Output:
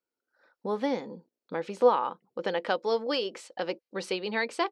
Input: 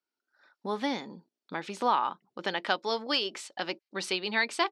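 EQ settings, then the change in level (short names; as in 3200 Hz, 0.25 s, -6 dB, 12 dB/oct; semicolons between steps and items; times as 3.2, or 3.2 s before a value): tilt shelf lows +3.5 dB, about 1200 Hz; bell 500 Hz +13.5 dB 0.23 oct; notch 3600 Hz, Q 22; -2.0 dB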